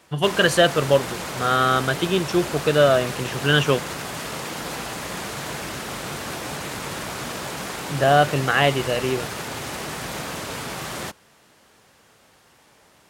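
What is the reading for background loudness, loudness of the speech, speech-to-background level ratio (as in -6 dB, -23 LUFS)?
-30.0 LUFS, -20.5 LUFS, 9.5 dB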